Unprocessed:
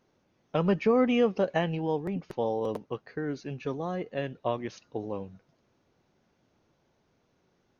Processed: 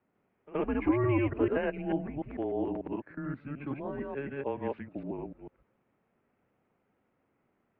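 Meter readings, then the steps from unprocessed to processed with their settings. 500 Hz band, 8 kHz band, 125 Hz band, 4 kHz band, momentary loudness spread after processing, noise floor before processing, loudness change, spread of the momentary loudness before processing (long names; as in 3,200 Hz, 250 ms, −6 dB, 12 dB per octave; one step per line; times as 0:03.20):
−5.0 dB, can't be measured, −1.5 dB, below −10 dB, 12 LU, −72 dBFS, −3.0 dB, 14 LU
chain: delay that plays each chunk backwards 148 ms, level −0.5 dB
backwards echo 74 ms −20 dB
single-sideband voice off tune −140 Hz 270–2,700 Hz
level −4.5 dB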